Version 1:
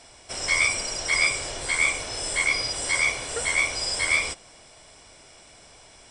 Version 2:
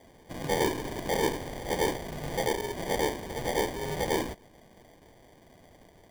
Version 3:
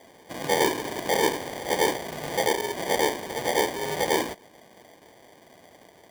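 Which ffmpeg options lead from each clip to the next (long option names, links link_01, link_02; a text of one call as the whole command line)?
ffmpeg -i in.wav -af "acrusher=samples=33:mix=1:aa=0.000001,volume=-5dB" out.wav
ffmpeg -i in.wav -af "highpass=frequency=390:poles=1,volume=6.5dB" out.wav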